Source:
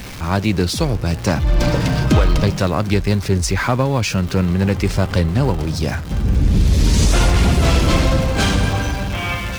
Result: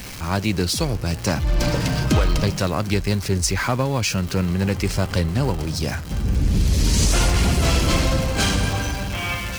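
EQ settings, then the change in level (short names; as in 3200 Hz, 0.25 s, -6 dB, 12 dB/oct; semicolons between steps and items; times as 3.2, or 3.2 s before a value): high shelf 3300 Hz +7 dB; notch 3600 Hz, Q 19; -4.5 dB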